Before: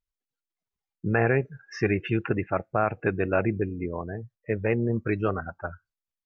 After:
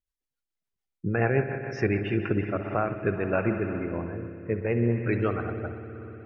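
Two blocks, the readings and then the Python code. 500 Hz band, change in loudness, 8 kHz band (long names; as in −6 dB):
−0.5 dB, −0.5 dB, can't be measured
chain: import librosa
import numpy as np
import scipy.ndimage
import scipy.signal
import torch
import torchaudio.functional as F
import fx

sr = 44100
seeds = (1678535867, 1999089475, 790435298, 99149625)

y = fx.rev_spring(x, sr, rt60_s=3.9, pass_ms=(59,), chirp_ms=35, drr_db=5.5)
y = fx.rotary_switch(y, sr, hz=7.0, then_hz=0.65, switch_at_s=2.08)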